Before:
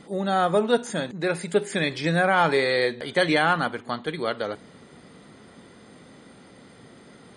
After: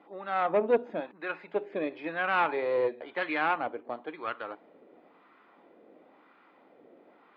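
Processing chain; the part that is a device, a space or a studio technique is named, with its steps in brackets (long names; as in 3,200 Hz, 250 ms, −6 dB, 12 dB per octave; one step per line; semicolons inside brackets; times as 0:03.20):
0:00.45–0:01.00: low-shelf EQ 240 Hz +12 dB
wah-wah guitar rig (LFO wah 0.98 Hz 540–1,200 Hz, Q 2.1; tube saturation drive 17 dB, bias 0.5; loudspeaker in its box 110–4,200 Hz, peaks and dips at 140 Hz −8 dB, 310 Hz +9 dB, 2,500 Hz +9 dB)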